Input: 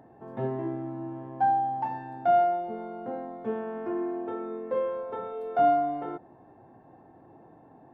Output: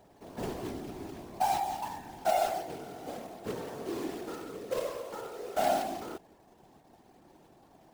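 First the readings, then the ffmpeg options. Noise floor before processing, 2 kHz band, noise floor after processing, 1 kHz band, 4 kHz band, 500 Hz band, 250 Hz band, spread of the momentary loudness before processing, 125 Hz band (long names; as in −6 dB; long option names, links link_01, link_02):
−55 dBFS, −0.5 dB, −61 dBFS, −6.5 dB, can't be measured, −5.5 dB, −6.0 dB, 13 LU, −6.5 dB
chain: -af "acrusher=bits=2:mode=log:mix=0:aa=0.000001,afftfilt=real='hypot(re,im)*cos(2*PI*random(0))':imag='hypot(re,im)*sin(2*PI*random(1))':win_size=512:overlap=0.75"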